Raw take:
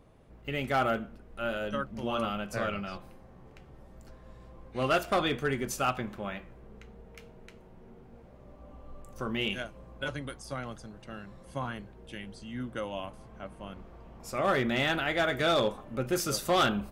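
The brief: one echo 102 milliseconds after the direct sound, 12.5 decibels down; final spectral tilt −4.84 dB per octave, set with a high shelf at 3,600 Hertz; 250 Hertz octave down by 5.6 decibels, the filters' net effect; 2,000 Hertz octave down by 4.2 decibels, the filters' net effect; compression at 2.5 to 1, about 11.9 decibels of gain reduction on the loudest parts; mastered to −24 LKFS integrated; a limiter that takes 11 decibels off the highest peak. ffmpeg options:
ffmpeg -i in.wav -af "equalizer=frequency=250:width_type=o:gain=-7.5,equalizer=frequency=2000:width_type=o:gain=-4,highshelf=frequency=3600:gain=-6,acompressor=threshold=-43dB:ratio=2.5,alimiter=level_in=15.5dB:limit=-24dB:level=0:latency=1,volume=-15.5dB,aecho=1:1:102:0.237,volume=26dB" out.wav

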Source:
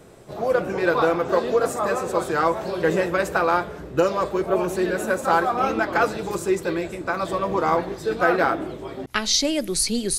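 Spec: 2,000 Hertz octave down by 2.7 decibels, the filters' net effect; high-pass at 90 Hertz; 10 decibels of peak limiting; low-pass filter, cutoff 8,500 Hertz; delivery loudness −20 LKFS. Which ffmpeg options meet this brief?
ffmpeg -i in.wav -af "highpass=90,lowpass=8500,equalizer=frequency=2000:width_type=o:gain=-4,volume=6.5dB,alimiter=limit=-10dB:level=0:latency=1" out.wav

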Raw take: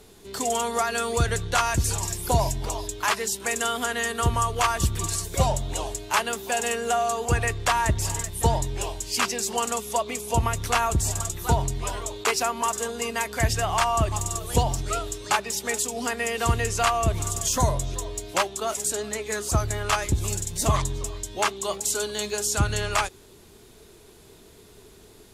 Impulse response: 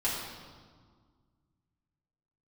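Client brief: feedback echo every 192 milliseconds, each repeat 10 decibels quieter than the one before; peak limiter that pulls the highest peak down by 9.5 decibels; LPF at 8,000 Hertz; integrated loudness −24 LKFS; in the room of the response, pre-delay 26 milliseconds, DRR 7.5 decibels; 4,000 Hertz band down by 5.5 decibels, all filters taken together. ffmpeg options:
-filter_complex "[0:a]lowpass=8000,equalizer=frequency=4000:width_type=o:gain=-7.5,alimiter=limit=-16dB:level=0:latency=1,aecho=1:1:192|384|576|768:0.316|0.101|0.0324|0.0104,asplit=2[link_01][link_02];[1:a]atrim=start_sample=2205,adelay=26[link_03];[link_02][link_03]afir=irnorm=-1:irlink=0,volume=-15.5dB[link_04];[link_01][link_04]amix=inputs=2:normalize=0,volume=3dB"

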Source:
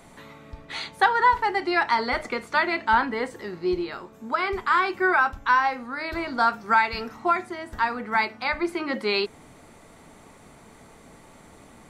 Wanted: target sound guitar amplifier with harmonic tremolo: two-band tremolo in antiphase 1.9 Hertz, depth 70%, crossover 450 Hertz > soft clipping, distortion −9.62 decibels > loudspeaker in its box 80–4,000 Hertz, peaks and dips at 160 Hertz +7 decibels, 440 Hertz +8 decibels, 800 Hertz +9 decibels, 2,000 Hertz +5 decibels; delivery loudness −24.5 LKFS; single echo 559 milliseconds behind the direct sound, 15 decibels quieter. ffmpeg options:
ffmpeg -i in.wav -filter_complex "[0:a]aecho=1:1:559:0.178,acrossover=split=450[link_01][link_02];[link_01]aeval=exprs='val(0)*(1-0.7/2+0.7/2*cos(2*PI*1.9*n/s))':channel_layout=same[link_03];[link_02]aeval=exprs='val(0)*(1-0.7/2-0.7/2*cos(2*PI*1.9*n/s))':channel_layout=same[link_04];[link_03][link_04]amix=inputs=2:normalize=0,asoftclip=threshold=-21.5dB,highpass=80,equalizer=frequency=160:width_type=q:width=4:gain=7,equalizer=frequency=440:width_type=q:width=4:gain=8,equalizer=frequency=800:width_type=q:width=4:gain=9,equalizer=frequency=2000:width_type=q:width=4:gain=5,lowpass=frequency=4000:width=0.5412,lowpass=frequency=4000:width=1.3066,volume=2.5dB" out.wav

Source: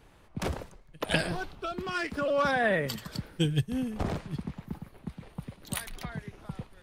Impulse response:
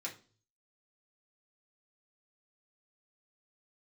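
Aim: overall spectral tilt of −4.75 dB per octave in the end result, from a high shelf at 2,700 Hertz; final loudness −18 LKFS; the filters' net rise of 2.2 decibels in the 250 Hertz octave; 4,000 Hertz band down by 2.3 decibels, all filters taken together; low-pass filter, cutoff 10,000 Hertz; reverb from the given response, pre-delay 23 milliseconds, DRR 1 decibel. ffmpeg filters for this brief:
-filter_complex "[0:a]lowpass=10000,equalizer=frequency=250:width_type=o:gain=3,highshelf=frequency=2700:gain=4.5,equalizer=frequency=4000:width_type=o:gain=-7,asplit=2[link_01][link_02];[1:a]atrim=start_sample=2205,adelay=23[link_03];[link_02][link_03]afir=irnorm=-1:irlink=0,volume=-0.5dB[link_04];[link_01][link_04]amix=inputs=2:normalize=0,volume=10.5dB"

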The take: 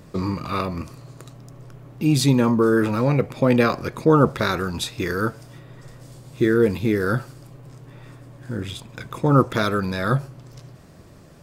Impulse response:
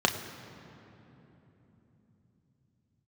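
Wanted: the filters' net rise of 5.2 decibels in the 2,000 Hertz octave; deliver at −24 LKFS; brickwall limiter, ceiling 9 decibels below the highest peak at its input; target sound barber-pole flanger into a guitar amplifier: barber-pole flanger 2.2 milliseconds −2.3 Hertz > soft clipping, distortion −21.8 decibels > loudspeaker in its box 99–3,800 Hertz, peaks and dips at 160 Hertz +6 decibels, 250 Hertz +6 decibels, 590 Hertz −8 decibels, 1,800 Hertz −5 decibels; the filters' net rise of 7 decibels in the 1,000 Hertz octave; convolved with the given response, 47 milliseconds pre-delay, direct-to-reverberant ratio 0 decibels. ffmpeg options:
-filter_complex "[0:a]equalizer=frequency=1000:width_type=o:gain=7.5,equalizer=frequency=2000:width_type=o:gain=7,alimiter=limit=-9dB:level=0:latency=1,asplit=2[link_01][link_02];[1:a]atrim=start_sample=2205,adelay=47[link_03];[link_02][link_03]afir=irnorm=-1:irlink=0,volume=-13dB[link_04];[link_01][link_04]amix=inputs=2:normalize=0,asplit=2[link_05][link_06];[link_06]adelay=2.2,afreqshift=-2.3[link_07];[link_05][link_07]amix=inputs=2:normalize=1,asoftclip=threshold=-9dB,highpass=99,equalizer=frequency=160:width_type=q:width=4:gain=6,equalizer=frequency=250:width_type=q:width=4:gain=6,equalizer=frequency=590:width_type=q:width=4:gain=-8,equalizer=frequency=1800:width_type=q:width=4:gain=-5,lowpass=frequency=3800:width=0.5412,lowpass=frequency=3800:width=1.3066,volume=-3dB"

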